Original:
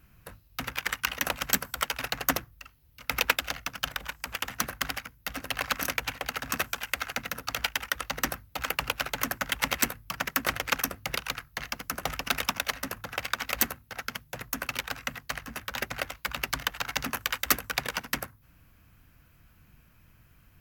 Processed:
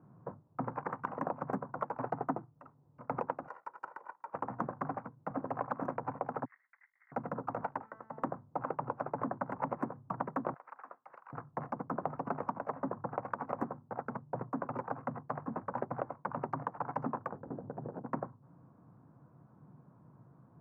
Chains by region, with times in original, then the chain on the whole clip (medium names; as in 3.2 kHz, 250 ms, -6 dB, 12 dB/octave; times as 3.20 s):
2.10–2.56 s: comb of notches 550 Hz + waveshaping leveller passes 1
3.47–4.34 s: comb filter that takes the minimum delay 2.1 ms + Bessel high-pass 1.3 kHz
6.45–7.12 s: Butterworth band-pass 2 kHz, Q 6.7 + compressor with a negative ratio -43 dBFS, ratio -0.5
7.82–8.23 s: peaking EQ 1.8 kHz +5.5 dB 0.4 oct + feedback comb 220 Hz, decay 1 s, mix 80%
10.54–11.33 s: high-pass 1.5 kHz + distance through air 160 m + compression, threshold -37 dBFS
17.32–18.06 s: median filter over 41 samples + waveshaping leveller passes 2 + compression 12:1, threshold -41 dBFS
whole clip: elliptic band-pass 130–1000 Hz, stop band 50 dB; compression, threshold -38 dBFS; trim +6.5 dB